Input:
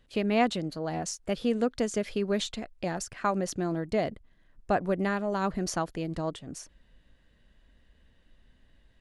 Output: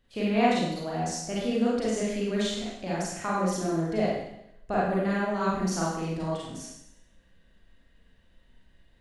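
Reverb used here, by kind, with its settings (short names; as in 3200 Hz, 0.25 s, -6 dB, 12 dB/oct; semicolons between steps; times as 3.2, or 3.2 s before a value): Schroeder reverb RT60 0.8 s, combs from 33 ms, DRR -7 dB; gain -6 dB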